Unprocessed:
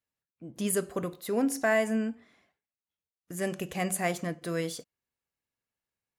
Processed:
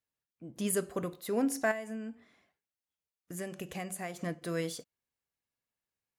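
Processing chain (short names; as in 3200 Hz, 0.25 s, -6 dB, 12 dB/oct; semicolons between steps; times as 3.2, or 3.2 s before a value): 1.71–4.21 compressor 12:1, threshold -33 dBFS, peak gain reduction 12.5 dB; gain -2.5 dB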